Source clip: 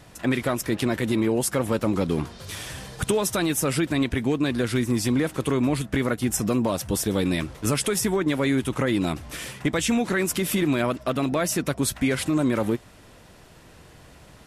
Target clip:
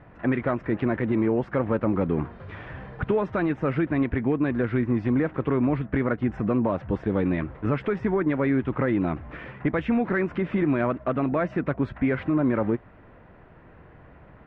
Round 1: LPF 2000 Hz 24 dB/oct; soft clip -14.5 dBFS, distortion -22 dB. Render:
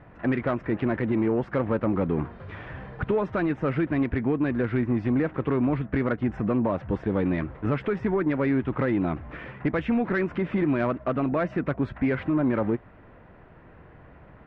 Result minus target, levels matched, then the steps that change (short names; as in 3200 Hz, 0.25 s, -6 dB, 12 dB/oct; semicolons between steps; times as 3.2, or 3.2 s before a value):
soft clip: distortion +13 dB
change: soft clip -7.5 dBFS, distortion -35 dB